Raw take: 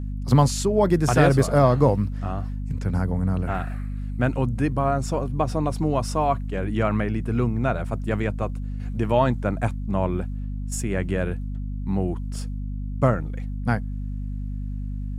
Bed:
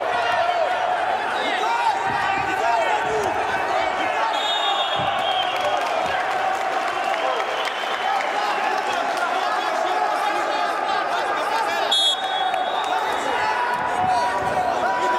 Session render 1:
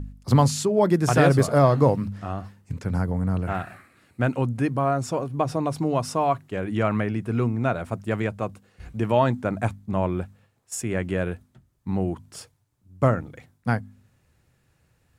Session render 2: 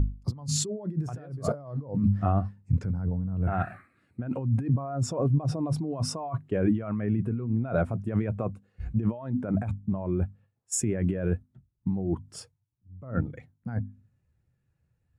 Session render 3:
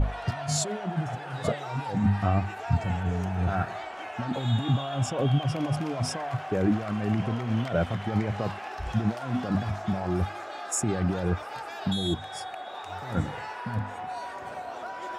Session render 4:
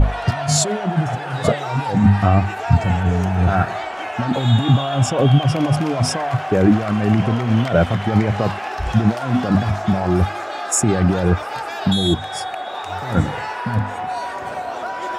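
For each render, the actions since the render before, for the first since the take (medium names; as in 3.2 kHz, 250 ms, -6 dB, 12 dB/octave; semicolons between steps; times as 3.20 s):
de-hum 50 Hz, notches 5
compressor with a negative ratio -30 dBFS, ratio -1; spectral contrast expander 1.5:1
add bed -16 dB
trim +10.5 dB; peak limiter -2 dBFS, peak gain reduction 1.5 dB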